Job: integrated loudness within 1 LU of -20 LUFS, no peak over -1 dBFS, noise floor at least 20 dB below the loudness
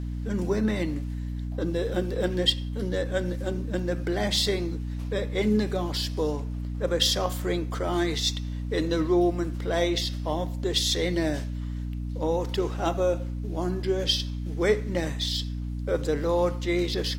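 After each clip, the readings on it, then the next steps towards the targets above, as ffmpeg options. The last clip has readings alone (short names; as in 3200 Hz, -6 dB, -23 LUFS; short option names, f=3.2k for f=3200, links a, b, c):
hum 60 Hz; harmonics up to 300 Hz; hum level -29 dBFS; loudness -27.5 LUFS; peak -9.5 dBFS; loudness target -20.0 LUFS
-> -af "bandreject=f=60:t=h:w=6,bandreject=f=120:t=h:w=6,bandreject=f=180:t=h:w=6,bandreject=f=240:t=h:w=6,bandreject=f=300:t=h:w=6"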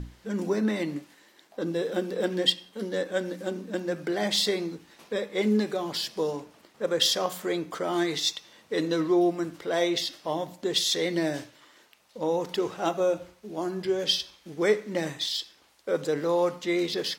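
hum none; loudness -28.0 LUFS; peak -9.5 dBFS; loudness target -20.0 LUFS
-> -af "volume=8dB"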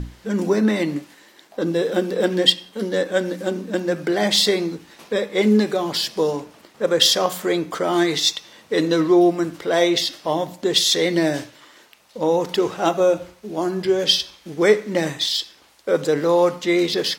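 loudness -20.0 LUFS; peak -1.5 dBFS; noise floor -52 dBFS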